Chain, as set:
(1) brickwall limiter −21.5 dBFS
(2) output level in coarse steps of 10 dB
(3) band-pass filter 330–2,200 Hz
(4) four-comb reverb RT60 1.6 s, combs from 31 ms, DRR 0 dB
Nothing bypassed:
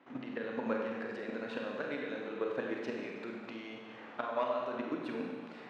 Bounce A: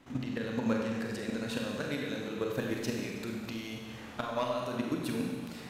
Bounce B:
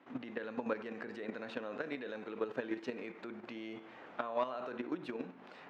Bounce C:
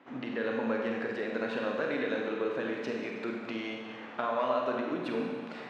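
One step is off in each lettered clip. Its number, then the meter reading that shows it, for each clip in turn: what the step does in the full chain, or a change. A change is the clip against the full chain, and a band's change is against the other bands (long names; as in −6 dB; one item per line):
3, 125 Hz band +12.5 dB
4, change in integrated loudness −3.0 LU
2, change in crest factor −3.0 dB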